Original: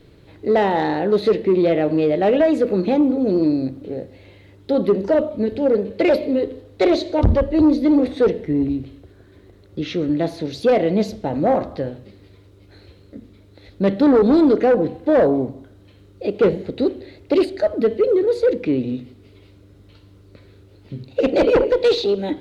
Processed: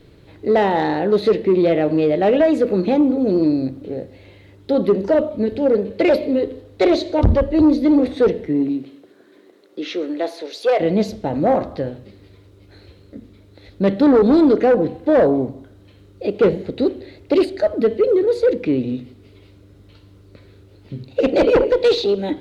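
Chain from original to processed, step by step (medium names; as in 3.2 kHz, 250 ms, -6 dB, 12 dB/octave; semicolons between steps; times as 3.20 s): 8.47–10.79 s: high-pass 150 Hz -> 490 Hz 24 dB/octave; trim +1 dB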